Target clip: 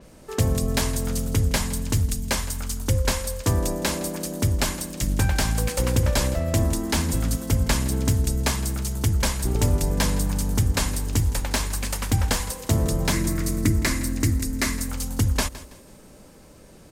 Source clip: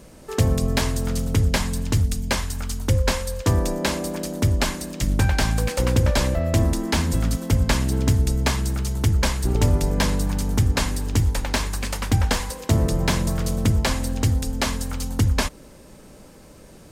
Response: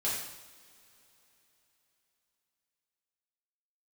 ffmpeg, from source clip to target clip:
-filter_complex "[0:a]asettb=1/sr,asplit=3[a][b][c];[a]atrim=end=13.124[d];[b]atrim=start=13.12:end=14.89,asetpts=PTS-STARTPTS,afade=t=in:d=0.004:c=qsin,afade=t=out:st=1.766:d=0.004:c=qsin,equalizer=f=315:t=o:w=0.33:g=12,equalizer=f=500:t=o:w=0.33:g=-8,equalizer=f=800:t=o:w=0.33:g=-11,equalizer=f=2k:t=o:w=0.33:g=9,equalizer=f=3.15k:t=o:w=0.33:g=-7[e];[c]atrim=start=14.886[f];[d][e]acrossfade=d=0.004:c1=hsin:c2=qsin[g];[g][f]acrossfade=d=0.004:c1=qsin:c2=hsin,asplit=2[h][i];[i]aecho=0:1:164|328|492:0.141|0.0438|0.0136[j];[h][j]amix=inputs=2:normalize=0,adynamicequalizer=threshold=0.00794:dfrequency=6100:dqfactor=0.7:tfrequency=6100:tqfactor=0.7:attack=5:release=100:ratio=0.375:range=3.5:mode=boostabove:tftype=highshelf,volume=-2.5dB"

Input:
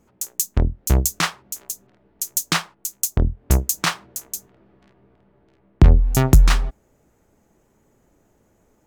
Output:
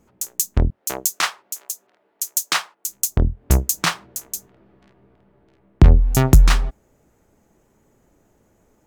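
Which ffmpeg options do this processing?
-filter_complex "[0:a]asettb=1/sr,asplit=3[a][b][c];[a]atrim=end=0.704[d];[b]atrim=start=0.7:end=2.87,asetpts=PTS-STARTPTS,afade=t=in:d=0.004:c=qsin,afade=t=out:st=2.166:d=0.004:c=qsin,highpass=530[e];[c]atrim=start=2.866[f];[d][e]acrossfade=d=0.004:c1=hsin:c2=qsin[g];[g][f]acrossfade=d=0.004:c1=qsin:c2=hsin,volume=1dB"

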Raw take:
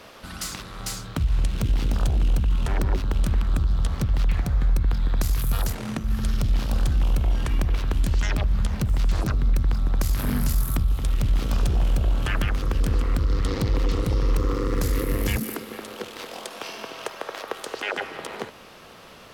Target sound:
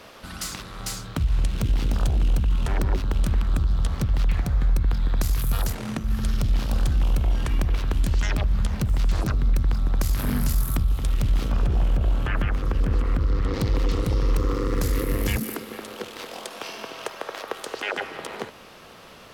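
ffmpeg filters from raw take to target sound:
-filter_complex "[0:a]asettb=1/sr,asplit=3[a][b][c];[a]atrim=end=11.484[d];[b]atrim=start=11.48:end=13.54,asetpts=PTS-STARTPTS,afade=t=in:d=0.004:c=qsin,afade=t=out:st=2.056:d=0.004:c=qsin,acrossover=split=2600[e][f];[f]acompressor=threshold=-48dB:ratio=4:attack=1:release=60[g];[e][g]amix=inputs=2:normalize=0[h];[c]atrim=start=13.536[i];[d][h]acrossfade=d=0.004:c1=hsin:c2=qsin[j];[j][i]acrossfade=d=0.004:c1=qsin:c2=hsin"

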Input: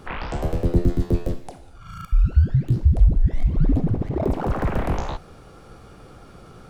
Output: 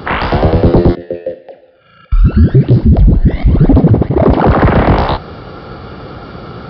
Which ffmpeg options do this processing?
-filter_complex "[0:a]asettb=1/sr,asplit=3[a][b][c];[a]atrim=end=3.734[d];[b]atrim=start=3.73:end=4.33,asetpts=PTS-STARTPTS,afade=t=in:d=0.004:c=qsin,afade=t=out:st=0.596:d=0.004:c=qsin,agate=range=-33dB:threshold=-20dB:ratio=3:detection=peak[e];[c]atrim=start=4.326[f];[d][e]acrossfade=d=0.004:c1=hsin:c2=qsin[g];[g][f]acrossfade=d=0.004:c1=qsin:c2=hsin,highpass=62,bandreject=f=2.5k:w=13,asettb=1/sr,asplit=3[h][i][j];[h]atrim=end=0.954[k];[i]atrim=start=0.95:end=2.12,asetpts=PTS-STARTPTS,afade=t=in:d=0.004:c=qsin,afade=t=out:st=1.166:d=0.004:c=qsin,asplit=3[l][m][n];[l]bandpass=f=530:t=q:w=8,volume=0dB[o];[m]bandpass=f=1.84k:t=q:w=8,volume=-6dB[p];[n]bandpass=f=2.48k:t=q:w=8,volume=-9dB[q];[o][p][q]amix=inputs=3:normalize=0[r];[j]atrim=start=2.116[s];[k][r]acrossfade=d=0.004:c1=hsin:c2=qsin[t];[t][s]acrossfade=d=0.004:c1=qsin:c2=hsin,aeval=exprs='0.668*sin(PI/2*3.98*val(0)/0.668)':c=same,aresample=11025,aresample=44100,volume=2dB"

